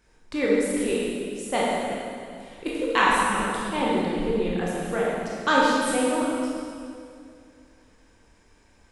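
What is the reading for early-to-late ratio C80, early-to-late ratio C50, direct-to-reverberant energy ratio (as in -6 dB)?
-0.5 dB, -3.0 dB, -6.0 dB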